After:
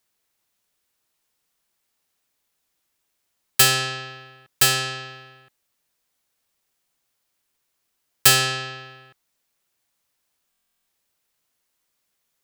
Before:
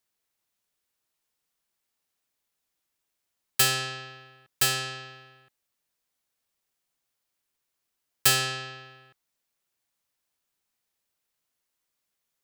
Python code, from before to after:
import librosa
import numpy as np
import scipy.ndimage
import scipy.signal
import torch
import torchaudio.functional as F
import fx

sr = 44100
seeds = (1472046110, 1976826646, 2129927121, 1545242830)

y = fx.buffer_glitch(x, sr, at_s=(10.5,), block=1024, repeats=15)
y = F.gain(torch.from_numpy(y), 6.5).numpy()